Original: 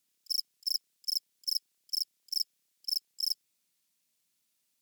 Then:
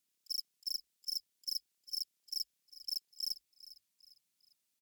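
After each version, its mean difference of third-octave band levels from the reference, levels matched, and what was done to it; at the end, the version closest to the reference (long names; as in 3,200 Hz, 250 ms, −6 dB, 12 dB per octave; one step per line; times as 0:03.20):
2.0 dB: soft clipping −22 dBFS, distortion −19 dB
on a send: echo with shifted repeats 401 ms, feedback 40%, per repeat −56 Hz, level −16.5 dB
on the sum: level −5 dB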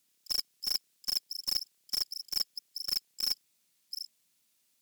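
9.5 dB: delay that plays each chunk backwards 518 ms, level −13 dB
in parallel at −4 dB: wrap-around overflow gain 30.5 dB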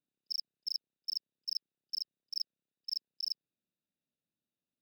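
3.5 dB: adaptive Wiener filter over 41 samples
high shelf with overshoot 5,600 Hz −14 dB, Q 3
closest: first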